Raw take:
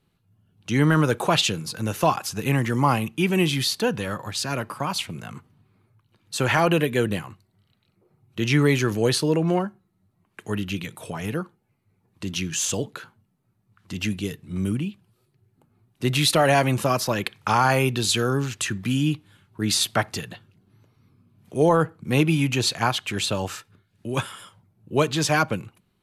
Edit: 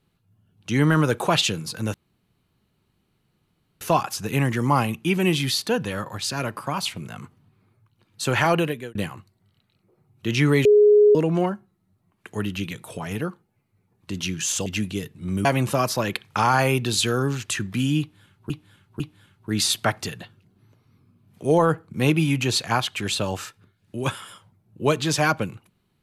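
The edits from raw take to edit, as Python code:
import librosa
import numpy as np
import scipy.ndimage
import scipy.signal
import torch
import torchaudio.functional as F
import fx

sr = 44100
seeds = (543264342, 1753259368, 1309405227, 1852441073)

y = fx.edit(x, sr, fx.insert_room_tone(at_s=1.94, length_s=1.87),
    fx.fade_out_span(start_s=6.65, length_s=0.43),
    fx.bleep(start_s=8.78, length_s=0.5, hz=417.0, db=-10.5),
    fx.cut(start_s=12.79, length_s=1.15),
    fx.cut(start_s=14.73, length_s=1.83),
    fx.repeat(start_s=19.11, length_s=0.5, count=3), tone=tone)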